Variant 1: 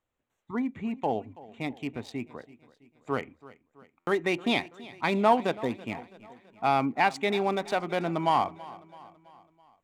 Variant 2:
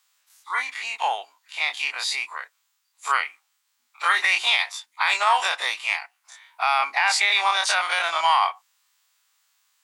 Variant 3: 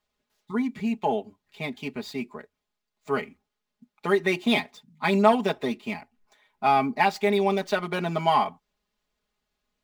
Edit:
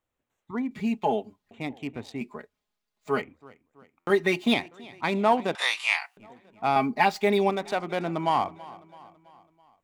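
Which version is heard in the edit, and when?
1
0:00.71–0:01.51: punch in from 3
0:02.21–0:03.22: punch in from 3
0:04.10–0:04.54: punch in from 3
0:05.55–0:06.17: punch in from 2
0:06.76–0:07.50: punch in from 3

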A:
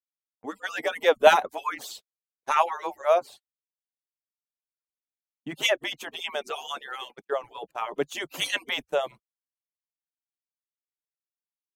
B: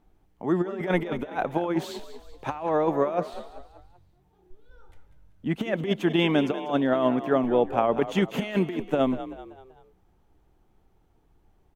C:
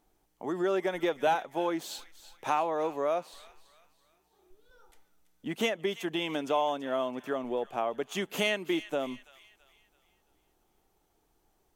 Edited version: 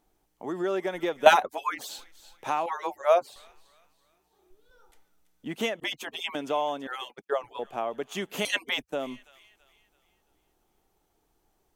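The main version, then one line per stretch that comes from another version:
C
0:01.26–0:01.89: punch in from A
0:02.66–0:03.36: punch in from A
0:05.80–0:06.35: punch in from A
0:06.87–0:07.59: punch in from A
0:08.45–0:08.93: punch in from A
not used: B

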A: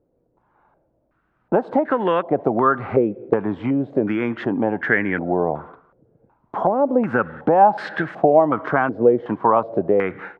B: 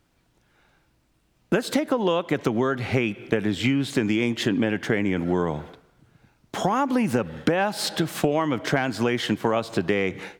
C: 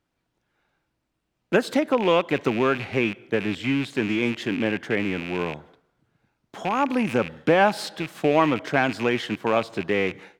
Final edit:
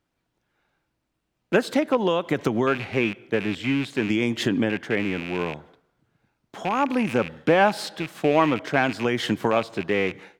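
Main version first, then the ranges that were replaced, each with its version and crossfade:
C
0:01.97–0:02.67: punch in from B
0:04.10–0:04.70: punch in from B
0:09.05–0:09.51: punch in from B
not used: A

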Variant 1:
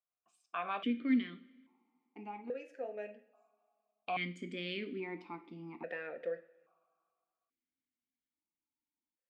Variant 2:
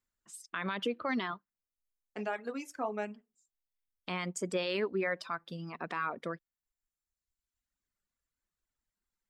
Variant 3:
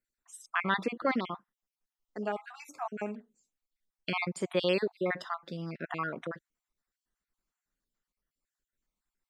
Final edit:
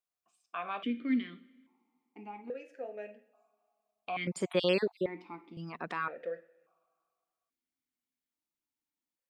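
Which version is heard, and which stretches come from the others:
1
0:04.27–0:05.06: punch in from 3
0:05.57–0:06.08: punch in from 2

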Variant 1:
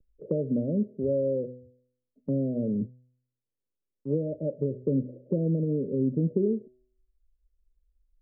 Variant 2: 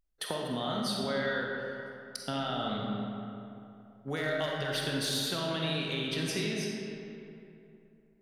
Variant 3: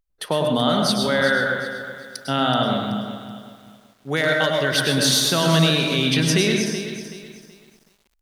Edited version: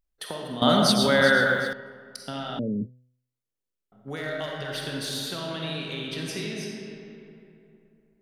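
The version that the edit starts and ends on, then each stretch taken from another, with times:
2
0:00.62–0:01.73: punch in from 3
0:02.59–0:03.92: punch in from 1

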